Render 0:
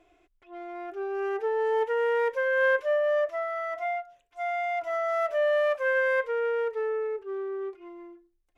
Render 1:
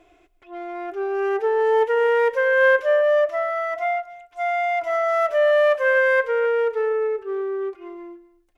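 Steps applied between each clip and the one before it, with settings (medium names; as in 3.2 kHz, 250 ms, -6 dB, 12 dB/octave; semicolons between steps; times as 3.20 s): delay 249 ms -19.5 dB; trim +7 dB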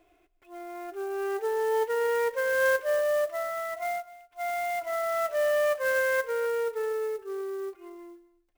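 sampling jitter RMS 0.021 ms; trim -8 dB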